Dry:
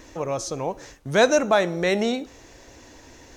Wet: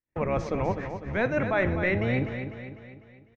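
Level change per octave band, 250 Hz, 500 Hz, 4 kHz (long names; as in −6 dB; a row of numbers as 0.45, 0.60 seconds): −2.5, −6.0, −15.5 decibels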